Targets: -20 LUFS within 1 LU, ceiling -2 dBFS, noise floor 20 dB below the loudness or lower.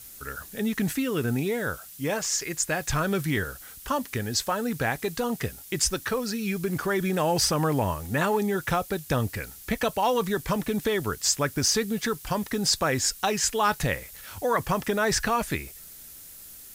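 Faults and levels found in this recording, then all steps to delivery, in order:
noise floor -46 dBFS; noise floor target -47 dBFS; loudness -26.5 LUFS; peak -11.0 dBFS; loudness target -20.0 LUFS
-> denoiser 6 dB, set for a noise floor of -46 dBFS; gain +6.5 dB

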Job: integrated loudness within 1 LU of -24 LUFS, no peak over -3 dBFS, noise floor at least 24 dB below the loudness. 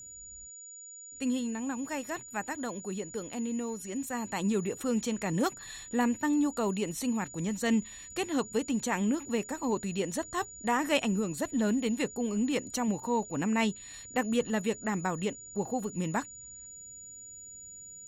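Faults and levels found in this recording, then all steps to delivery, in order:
steady tone 6900 Hz; tone level -45 dBFS; loudness -31.5 LUFS; peak -13.0 dBFS; loudness target -24.0 LUFS
-> notch 6900 Hz, Q 30; gain +7.5 dB

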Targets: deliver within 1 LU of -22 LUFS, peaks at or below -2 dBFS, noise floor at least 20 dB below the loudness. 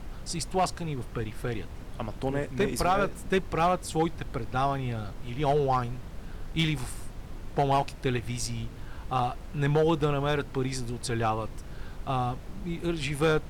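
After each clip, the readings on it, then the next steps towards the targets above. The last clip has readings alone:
clipped 0.5%; flat tops at -17.5 dBFS; noise floor -42 dBFS; noise floor target -50 dBFS; loudness -29.5 LUFS; peak -17.5 dBFS; loudness target -22.0 LUFS
-> clip repair -17.5 dBFS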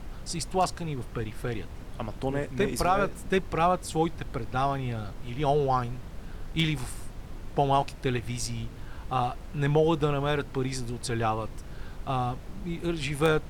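clipped 0.0%; noise floor -42 dBFS; noise floor target -50 dBFS
-> noise print and reduce 8 dB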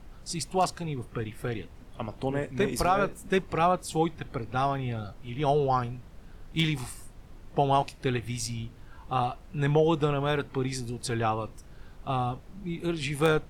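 noise floor -49 dBFS; noise floor target -50 dBFS
-> noise print and reduce 6 dB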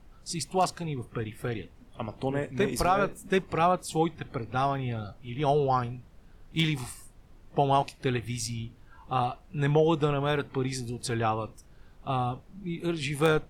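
noise floor -55 dBFS; loudness -29.5 LUFS; peak -10.5 dBFS; loudness target -22.0 LUFS
-> gain +7.5 dB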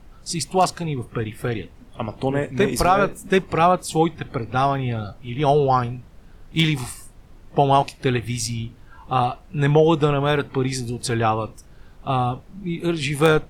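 loudness -22.0 LUFS; peak -3.0 dBFS; noise floor -47 dBFS

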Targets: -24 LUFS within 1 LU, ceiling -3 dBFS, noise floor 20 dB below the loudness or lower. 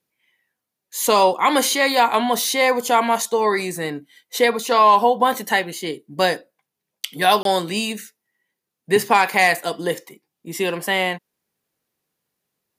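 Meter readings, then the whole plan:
dropouts 1; longest dropout 22 ms; loudness -18.5 LUFS; peak -3.5 dBFS; loudness target -24.0 LUFS
-> interpolate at 7.43, 22 ms; gain -5.5 dB

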